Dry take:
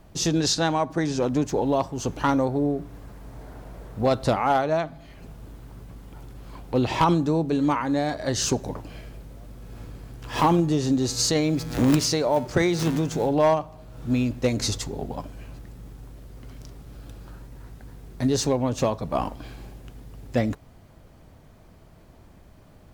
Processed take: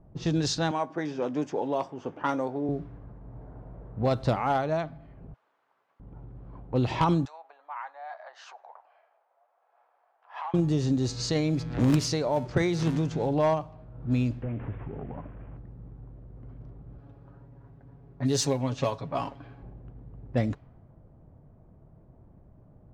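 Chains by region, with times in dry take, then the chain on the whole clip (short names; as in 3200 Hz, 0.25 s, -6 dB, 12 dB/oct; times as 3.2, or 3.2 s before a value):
0.71–2.69 HPF 280 Hz + notch 4100 Hz, Q 6.5 + doubler 20 ms -13.5 dB
5.34–6 HPF 1100 Hz + tilt +4.5 dB/oct
7.25–10.54 compressor 10:1, threshold -23 dBFS + elliptic high-pass 720 Hz, stop band 80 dB
14.42–15.57 delta modulation 16 kbps, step -39 dBFS + compressor 2:1, threshold -30 dBFS
16.98–19.63 tilt +2 dB/oct + comb 7.2 ms, depth 59%
whole clip: high shelf 10000 Hz -9 dB; low-pass opened by the level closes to 740 Hz, open at -18 dBFS; bell 130 Hz +6 dB 0.81 oct; gain -5 dB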